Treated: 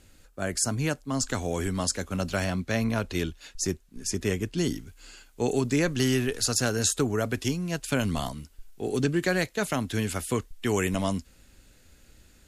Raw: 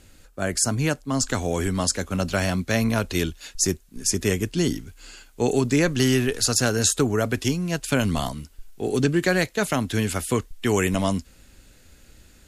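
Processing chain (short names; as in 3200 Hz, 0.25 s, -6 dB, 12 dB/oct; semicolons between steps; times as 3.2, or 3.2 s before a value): 2.44–4.58 high shelf 6000 Hz -7 dB; gain -4.5 dB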